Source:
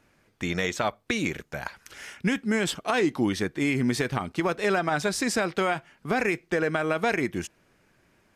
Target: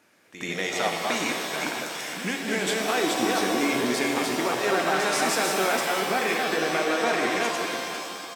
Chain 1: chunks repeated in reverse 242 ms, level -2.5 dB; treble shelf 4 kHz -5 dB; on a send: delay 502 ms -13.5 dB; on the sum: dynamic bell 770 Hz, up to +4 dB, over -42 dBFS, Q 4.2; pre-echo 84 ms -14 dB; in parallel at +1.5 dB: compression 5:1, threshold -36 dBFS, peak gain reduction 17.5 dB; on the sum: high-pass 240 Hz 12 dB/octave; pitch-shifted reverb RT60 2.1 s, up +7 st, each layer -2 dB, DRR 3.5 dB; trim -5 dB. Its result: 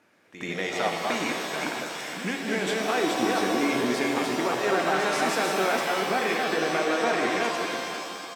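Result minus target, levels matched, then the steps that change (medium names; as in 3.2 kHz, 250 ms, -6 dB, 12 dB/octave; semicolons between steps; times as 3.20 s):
8 kHz band -4.0 dB
change: treble shelf 4 kHz +4.5 dB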